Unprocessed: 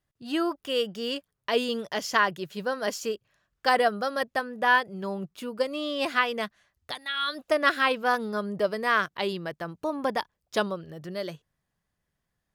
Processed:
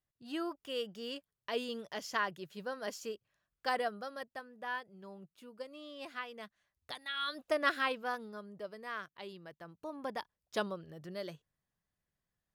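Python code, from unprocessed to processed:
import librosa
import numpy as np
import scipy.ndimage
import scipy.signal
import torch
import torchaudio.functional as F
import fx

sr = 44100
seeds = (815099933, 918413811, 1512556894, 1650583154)

y = fx.gain(x, sr, db=fx.line((3.7, -11.0), (4.49, -18.0), (6.35, -18.0), (6.97, -8.0), (7.75, -8.0), (8.48, -18.0), (9.31, -18.0), (10.59, -8.5)))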